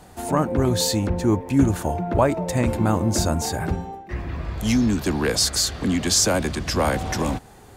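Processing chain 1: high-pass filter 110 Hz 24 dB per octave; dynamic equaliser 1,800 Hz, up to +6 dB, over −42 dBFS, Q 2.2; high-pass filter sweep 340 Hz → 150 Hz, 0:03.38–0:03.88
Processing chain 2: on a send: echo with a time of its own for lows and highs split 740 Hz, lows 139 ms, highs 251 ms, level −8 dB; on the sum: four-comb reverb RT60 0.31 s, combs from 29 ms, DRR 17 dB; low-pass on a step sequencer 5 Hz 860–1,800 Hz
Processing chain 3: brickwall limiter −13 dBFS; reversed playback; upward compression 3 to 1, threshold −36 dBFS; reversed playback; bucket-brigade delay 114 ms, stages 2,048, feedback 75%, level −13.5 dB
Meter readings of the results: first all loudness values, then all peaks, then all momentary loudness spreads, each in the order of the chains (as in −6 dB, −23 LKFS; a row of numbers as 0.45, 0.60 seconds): −19.5, −20.0, −23.5 LKFS; −2.5, −1.0, −11.5 dBFS; 9, 8, 6 LU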